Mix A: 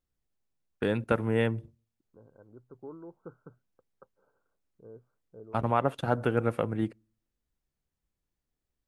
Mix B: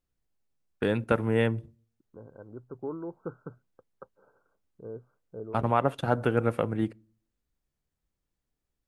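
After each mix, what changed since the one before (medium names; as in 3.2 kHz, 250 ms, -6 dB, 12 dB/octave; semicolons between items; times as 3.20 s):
first voice: send +9.0 dB; second voice +8.5 dB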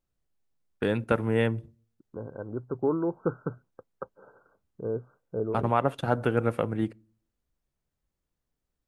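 second voice +9.5 dB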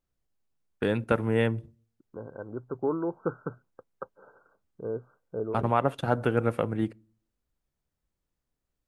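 second voice: add tilt EQ +1.5 dB/octave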